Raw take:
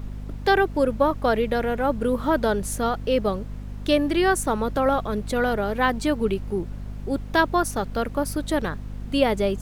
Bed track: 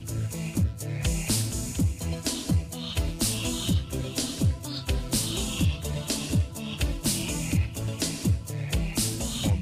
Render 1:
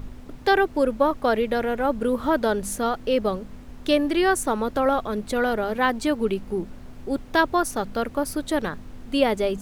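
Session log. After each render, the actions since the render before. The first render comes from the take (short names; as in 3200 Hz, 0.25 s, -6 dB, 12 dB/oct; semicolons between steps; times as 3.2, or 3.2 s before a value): de-hum 50 Hz, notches 4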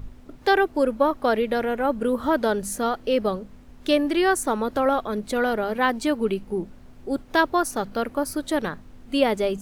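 noise print and reduce 6 dB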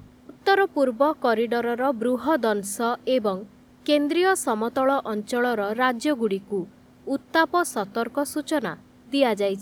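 HPF 120 Hz 12 dB/oct; notch 2600 Hz, Q 18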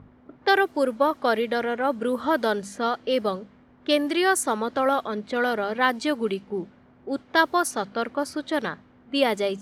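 low-pass opened by the level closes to 1400 Hz, open at -17 dBFS; tilt shelf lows -3 dB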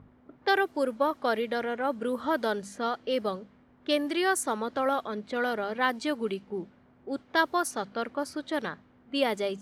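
gain -5 dB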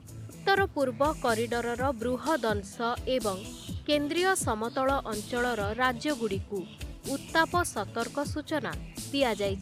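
add bed track -13 dB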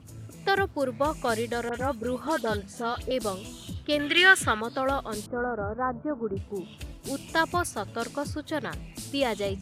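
1.69–3.11 dispersion highs, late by 51 ms, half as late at 2000 Hz; 3.99–4.61 band shelf 2200 Hz +13.5 dB; 5.26–6.37 elliptic low-pass 1400 Hz, stop band 70 dB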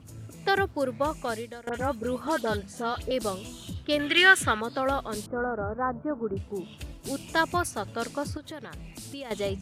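0.71–1.67 fade out equal-power, to -20.5 dB; 8.37–9.31 compressor 4:1, threshold -37 dBFS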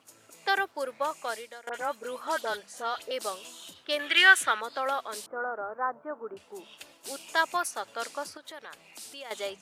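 HPF 640 Hz 12 dB/oct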